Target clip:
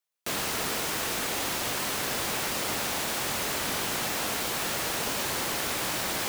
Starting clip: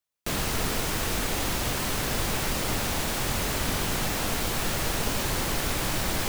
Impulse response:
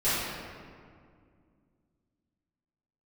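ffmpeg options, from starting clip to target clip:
-af "highpass=f=370:p=1"

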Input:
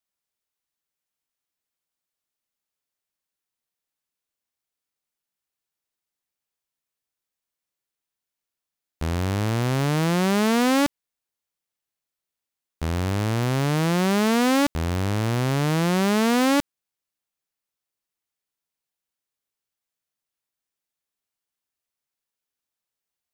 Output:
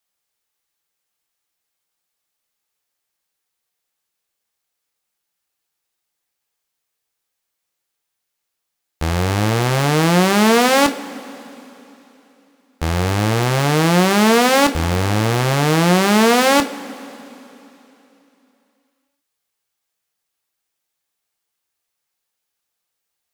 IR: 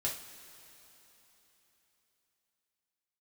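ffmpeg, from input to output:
-filter_complex "[0:a]asplit=2[a][b];[b]highpass=f=220:w=0.5412,highpass=f=220:w=1.3066[c];[1:a]atrim=start_sample=2205,asetrate=52920,aresample=44100[d];[c][d]afir=irnorm=-1:irlink=0,volume=-3.5dB[e];[a][e]amix=inputs=2:normalize=0,volume=5.5dB"

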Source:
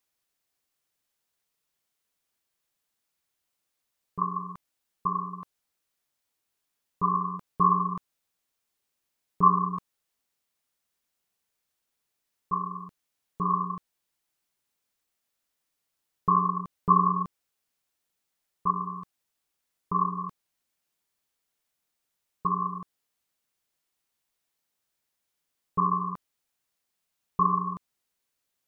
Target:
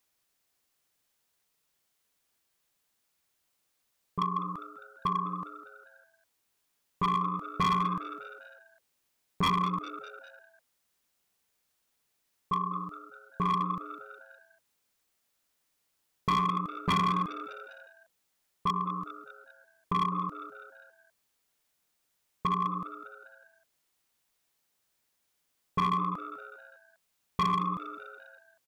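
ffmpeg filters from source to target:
-filter_complex "[0:a]aeval=exprs='0.447*sin(PI/2*2.82*val(0)/0.447)':c=same,asplit=5[a][b][c][d][e];[b]adelay=201,afreqshift=120,volume=-16dB[f];[c]adelay=402,afreqshift=240,volume=-22.2dB[g];[d]adelay=603,afreqshift=360,volume=-28.4dB[h];[e]adelay=804,afreqshift=480,volume=-34.6dB[i];[a][f][g][h][i]amix=inputs=5:normalize=0,asoftclip=type=hard:threshold=-9.5dB,acompressor=threshold=-23dB:ratio=1.5,volume=-9dB"

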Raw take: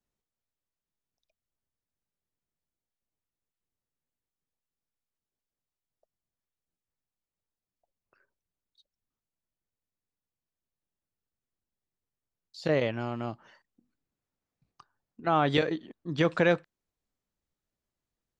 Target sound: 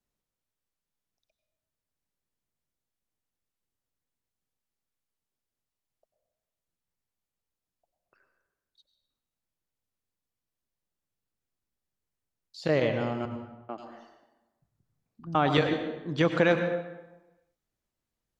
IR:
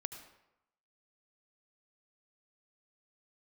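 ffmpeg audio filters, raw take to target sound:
-filter_complex "[0:a]asettb=1/sr,asplit=3[a][b][c];[a]atrim=end=13.254[d];[b]atrim=start=13.25:end=15.35,asetpts=PTS-STARTPTS,afade=t=in:d=0.004:c=qsin,afade=t=out:st=2.096:d=0.004:c=qsin,acrossover=split=240|2700[e][f][g];[f]adelay=440[h];[g]adelay=530[i];[e][h][i]amix=inputs=3:normalize=0,atrim=end_sample=92610[j];[c]atrim=start=15.346[k];[d][j]acrossfade=d=0.004:c1=hsin:c2=qsin[l];[l][k]acrossfade=d=0.004:c1=qsin:c2=hsin[m];[1:a]atrim=start_sample=2205,asetrate=34398,aresample=44100[n];[m][n]afir=irnorm=-1:irlink=0,volume=2dB"

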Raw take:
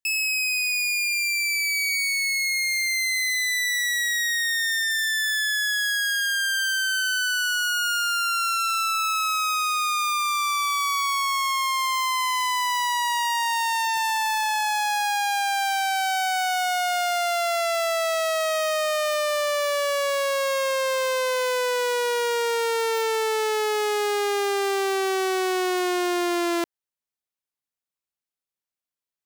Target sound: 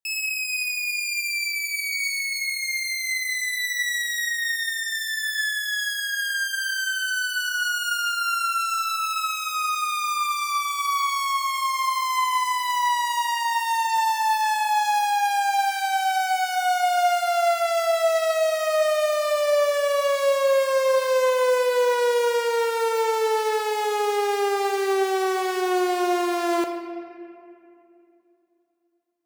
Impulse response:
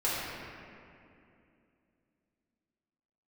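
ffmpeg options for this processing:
-filter_complex "[0:a]equalizer=f=630:t=o:w=1.9:g=8.5,asplit=2[a][b];[1:a]atrim=start_sample=2205,highshelf=f=3.4k:g=9[c];[b][c]afir=irnorm=-1:irlink=0,volume=-15dB[d];[a][d]amix=inputs=2:normalize=0,volume=-6.5dB"

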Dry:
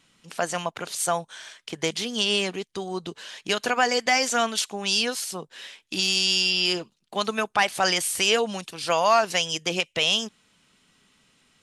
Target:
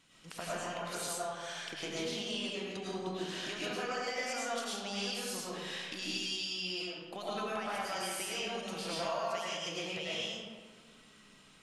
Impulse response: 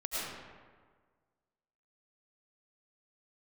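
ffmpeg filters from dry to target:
-filter_complex "[0:a]acompressor=threshold=-38dB:ratio=6[a];[1:a]atrim=start_sample=2205[b];[a][b]afir=irnorm=-1:irlink=0,volume=-1.5dB"

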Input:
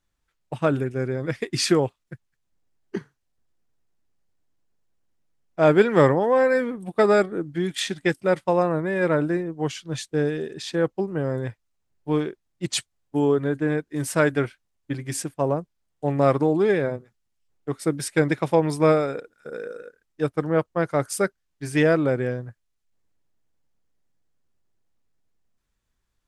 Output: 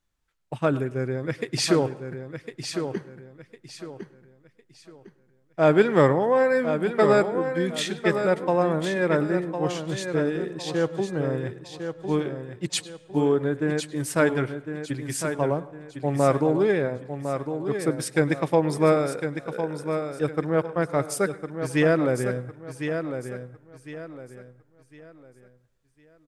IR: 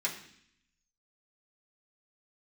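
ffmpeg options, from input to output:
-filter_complex "[0:a]aecho=1:1:1055|2110|3165|4220:0.398|0.127|0.0408|0.013,asplit=2[a][b];[1:a]atrim=start_sample=2205,asetrate=22932,aresample=44100,adelay=99[c];[b][c]afir=irnorm=-1:irlink=0,volume=-27.5dB[d];[a][d]amix=inputs=2:normalize=0,volume=-1.5dB"

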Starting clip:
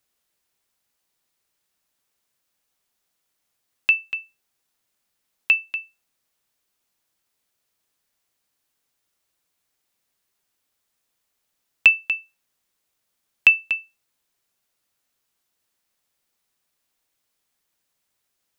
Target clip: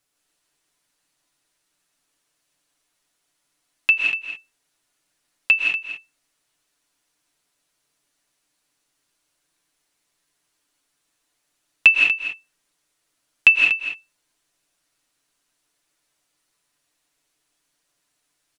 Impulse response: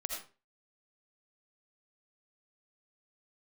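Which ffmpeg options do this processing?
-filter_complex "[0:a]aecho=1:1:6.9:0.43[a];[1:a]atrim=start_sample=2205,afade=t=out:st=0.16:d=0.01,atrim=end_sample=7497,asetrate=22050,aresample=44100[b];[a][b]afir=irnorm=-1:irlink=0,volume=-1dB"

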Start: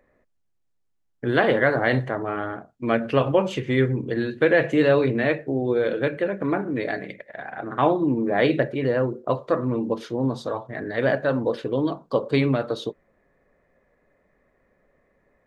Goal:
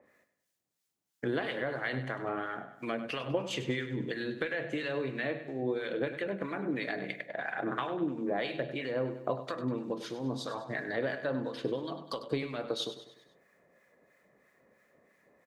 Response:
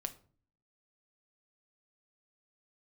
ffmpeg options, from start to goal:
-filter_complex "[0:a]highpass=140,highshelf=f=2.8k:g=11.5,acompressor=threshold=-28dB:ratio=10,acrossover=split=1100[a][b];[a]aeval=exprs='val(0)*(1-0.7/2+0.7/2*cos(2*PI*3*n/s))':c=same[c];[b]aeval=exprs='val(0)*(1-0.7/2-0.7/2*cos(2*PI*3*n/s))':c=same[d];[c][d]amix=inputs=2:normalize=0,aecho=1:1:99|198|297|396|495:0.251|0.121|0.0579|0.0278|0.0133,asplit=2[e][f];[1:a]atrim=start_sample=2205[g];[f][g]afir=irnorm=-1:irlink=0,volume=-4dB[h];[e][h]amix=inputs=2:normalize=0,adynamicequalizer=threshold=0.00224:dfrequency=4700:dqfactor=0.7:tfrequency=4700:tqfactor=0.7:attack=5:release=100:ratio=0.375:range=2.5:mode=cutabove:tftype=highshelf,volume=-2.5dB"

